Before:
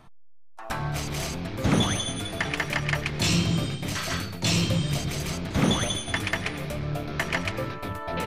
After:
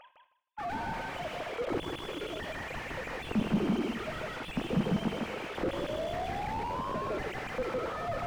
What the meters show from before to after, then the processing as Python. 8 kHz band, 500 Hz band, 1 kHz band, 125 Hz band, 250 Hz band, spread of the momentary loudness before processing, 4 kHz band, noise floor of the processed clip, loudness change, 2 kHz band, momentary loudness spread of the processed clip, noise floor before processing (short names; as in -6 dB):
-21.0 dB, -1.5 dB, -2.0 dB, -12.5 dB, -5.0 dB, 8 LU, -14.0 dB, -61 dBFS, -7.5 dB, -9.0 dB, 7 LU, -43 dBFS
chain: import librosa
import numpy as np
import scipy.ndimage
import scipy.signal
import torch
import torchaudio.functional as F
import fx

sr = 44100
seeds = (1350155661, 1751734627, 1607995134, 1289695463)

p1 = fx.sine_speech(x, sr)
p2 = fx.spec_paint(p1, sr, seeds[0], shape='rise', start_s=5.64, length_s=1.27, low_hz=520.0, high_hz=1100.0, level_db=-24.0)
p3 = fx.high_shelf(p2, sr, hz=2300.0, db=11.0)
p4 = p3 + fx.echo_feedback(p3, sr, ms=157, feedback_pct=16, wet_db=-3.5, dry=0)
p5 = fx.rev_gated(p4, sr, seeds[1], gate_ms=120, shape='flat', drr_db=8.5)
p6 = fx.rider(p5, sr, range_db=3, speed_s=0.5)
p7 = fx.slew_limit(p6, sr, full_power_hz=30.0)
y = p7 * 10.0 ** (-4.5 / 20.0)